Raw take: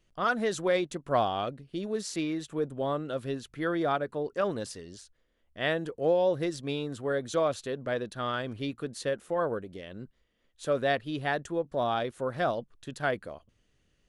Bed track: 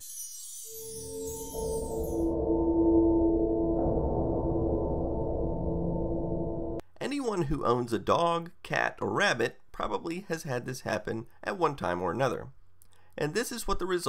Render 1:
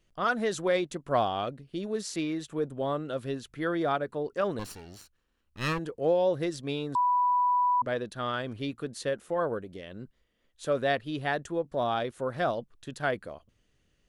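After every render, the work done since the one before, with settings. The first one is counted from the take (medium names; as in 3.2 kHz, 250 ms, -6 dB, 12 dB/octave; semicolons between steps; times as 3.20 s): 4.59–5.79 s: comb filter that takes the minimum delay 0.71 ms; 6.95–7.82 s: bleep 987 Hz -21.5 dBFS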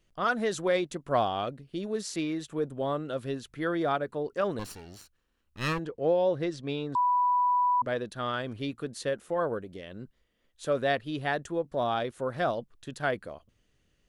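5.80–6.98 s: distance through air 77 m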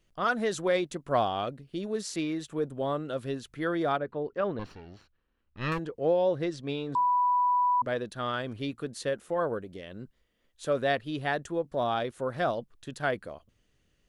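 3.97–5.72 s: distance through air 250 m; 6.60–7.28 s: de-hum 150.8 Hz, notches 40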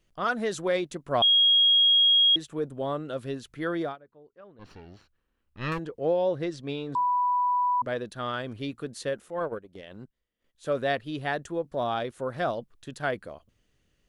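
1.22–2.36 s: bleep 3.28 kHz -16.5 dBFS; 3.81–4.73 s: dip -20.5 dB, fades 0.15 s; 9.21–10.66 s: transient shaper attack -8 dB, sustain -12 dB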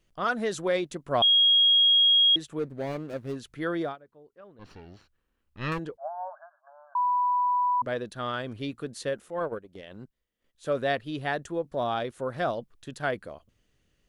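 2.59–3.36 s: median filter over 41 samples; 5.97–7.05 s: brick-wall FIR band-pass 580–1700 Hz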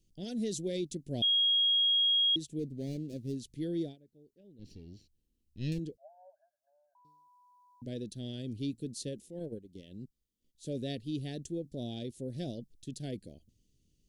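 Chebyshev band-stop 280–4900 Hz, order 2; peaking EQ 1.6 kHz +3.5 dB 1.1 oct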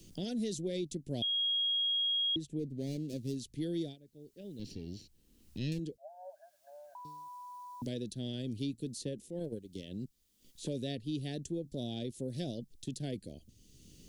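three bands compressed up and down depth 70%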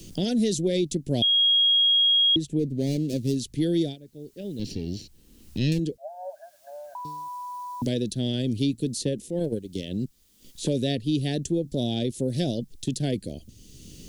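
trim +12 dB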